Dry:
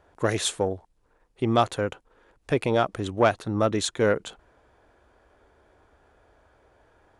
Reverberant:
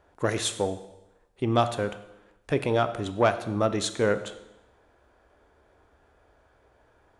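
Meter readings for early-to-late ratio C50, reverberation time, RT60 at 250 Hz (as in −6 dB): 13.0 dB, 0.95 s, 0.95 s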